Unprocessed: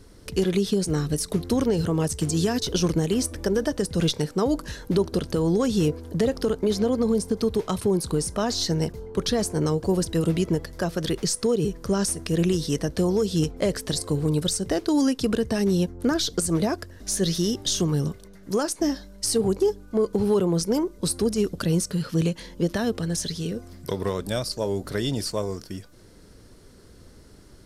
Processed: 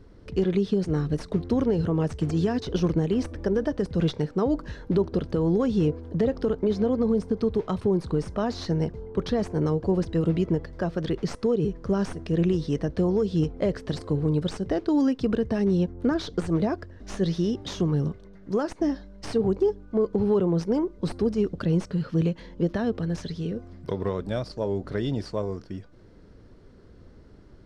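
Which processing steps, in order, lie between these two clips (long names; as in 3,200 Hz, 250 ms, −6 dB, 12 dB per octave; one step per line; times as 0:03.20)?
stylus tracing distortion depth 0.045 ms
head-to-tape spacing loss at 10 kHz 26 dB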